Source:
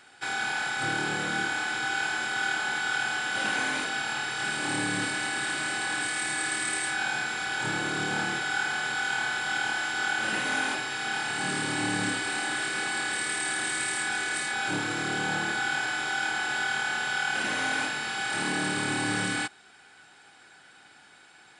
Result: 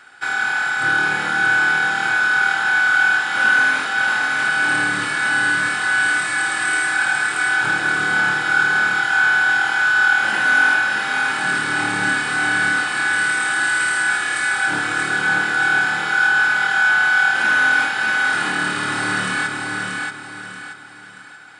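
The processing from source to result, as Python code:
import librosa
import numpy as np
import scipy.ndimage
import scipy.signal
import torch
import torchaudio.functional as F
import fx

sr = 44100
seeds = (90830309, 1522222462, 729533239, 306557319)

p1 = fx.peak_eq(x, sr, hz=1400.0, db=10.0, octaves=1.0)
p2 = p1 + fx.echo_feedback(p1, sr, ms=631, feedback_pct=36, wet_db=-3.5, dry=0)
y = F.gain(torch.from_numpy(p2), 2.0).numpy()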